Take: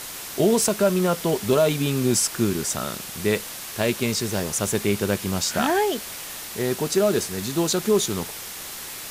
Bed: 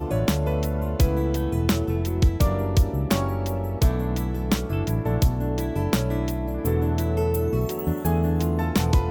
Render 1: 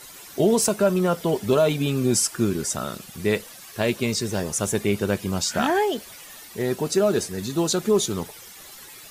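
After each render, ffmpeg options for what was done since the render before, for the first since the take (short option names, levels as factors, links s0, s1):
-af "afftdn=nr=12:nf=-36"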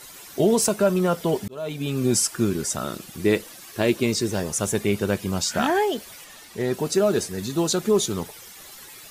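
-filter_complex "[0:a]asettb=1/sr,asplit=3[s0][s1][s2];[s0]atrim=end=2.844[s3];[s1]atrim=start=2.84:end=4.32,asetpts=PTS-STARTPTS,afade=t=in:d=0.004:c=qsin,afade=t=out:st=1.476:d=0.004:c=qsin,equalizer=f=320:t=o:w=0.42:g=8.5[s4];[s2]atrim=start=4.316[s5];[s3][s4]acrossfade=d=0.004:c1=hsin:c2=qsin[s6];[s6][s5]acrossfade=d=0.004:c1=qsin:c2=hsin,asettb=1/sr,asplit=3[s7][s8][s9];[s7]atrim=end=6.244[s10];[s8]atrim=start=6.24:end=6.74,asetpts=PTS-STARTPTS,afade=t=in:d=0.004:c=qsin,afade=t=out:st=0.496:d=0.004:c=qsin,highshelf=f=12000:g=-11.5[s11];[s9]atrim=start=6.736[s12];[s10][s11]acrossfade=d=0.004:c1=hsin:c2=qsin[s13];[s13][s12]acrossfade=d=0.004:c1=qsin:c2=hsin,asplit=2[s14][s15];[s14]atrim=end=1.48,asetpts=PTS-STARTPTS,afade=t=out:st=1.476:d=0.004:c=hsin[s16];[s15]atrim=start=1.48,asetpts=PTS-STARTPTS,afade=t=in:d=0.58[s17];[s16][s17]concat=n=2:v=0:a=1"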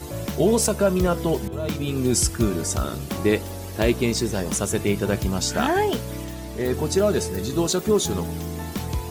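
-filter_complex "[1:a]volume=0.422[s0];[0:a][s0]amix=inputs=2:normalize=0"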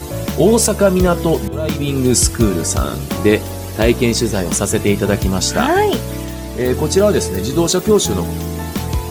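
-af "volume=2.37,alimiter=limit=0.891:level=0:latency=1"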